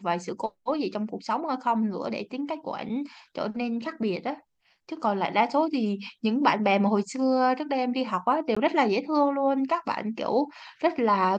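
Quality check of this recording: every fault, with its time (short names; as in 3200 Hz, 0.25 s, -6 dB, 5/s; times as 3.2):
8.55–8.56 gap 15 ms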